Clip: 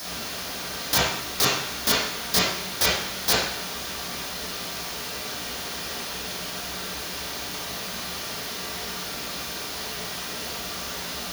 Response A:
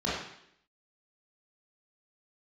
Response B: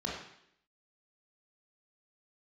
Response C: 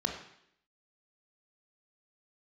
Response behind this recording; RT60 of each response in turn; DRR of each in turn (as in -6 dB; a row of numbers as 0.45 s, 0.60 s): A; 0.70 s, 0.70 s, 0.70 s; -8.5 dB, -3.5 dB, 2.5 dB